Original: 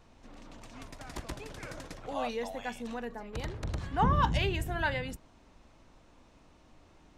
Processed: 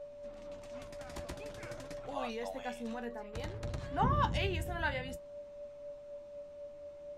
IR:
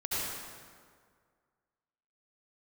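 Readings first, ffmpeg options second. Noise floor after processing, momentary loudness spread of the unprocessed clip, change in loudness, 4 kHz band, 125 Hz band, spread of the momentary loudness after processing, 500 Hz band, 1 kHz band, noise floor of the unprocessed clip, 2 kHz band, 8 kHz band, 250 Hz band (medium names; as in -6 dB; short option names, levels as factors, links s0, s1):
-50 dBFS, 21 LU, -5.5 dB, -4.0 dB, -4.0 dB, 16 LU, -1.0 dB, -4.0 dB, -60 dBFS, -4.0 dB, -4.0 dB, -4.0 dB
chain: -af "aeval=exprs='val(0)+0.00891*sin(2*PI*580*n/s)':c=same,flanger=delay=6.8:depth=6.9:regen=50:speed=0.51:shape=triangular"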